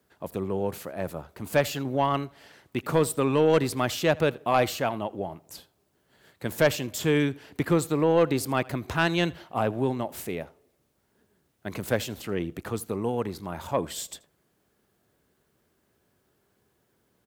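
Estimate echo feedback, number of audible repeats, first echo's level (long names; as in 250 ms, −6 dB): repeats not evenly spaced, 1, −23.5 dB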